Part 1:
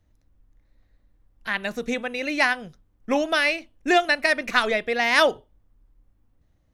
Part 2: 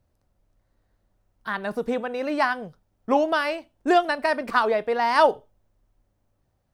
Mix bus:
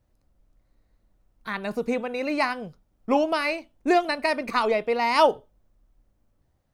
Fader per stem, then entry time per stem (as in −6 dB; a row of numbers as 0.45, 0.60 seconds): −9.0, −1.0 decibels; 0.00, 0.00 seconds